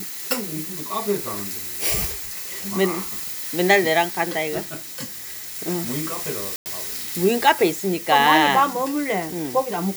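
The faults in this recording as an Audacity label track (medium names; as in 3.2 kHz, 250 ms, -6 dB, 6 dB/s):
6.560000	6.660000	dropout 99 ms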